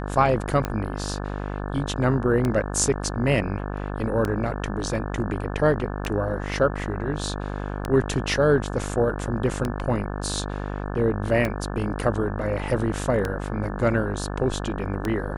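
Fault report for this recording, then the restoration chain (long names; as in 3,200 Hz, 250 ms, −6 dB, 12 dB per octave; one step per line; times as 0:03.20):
mains buzz 50 Hz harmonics 35 −30 dBFS
scratch tick 33 1/3 rpm −12 dBFS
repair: click removal
hum removal 50 Hz, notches 35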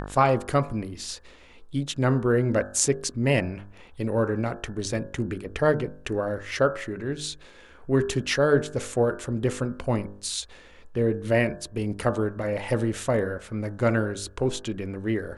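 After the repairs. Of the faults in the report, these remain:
none of them is left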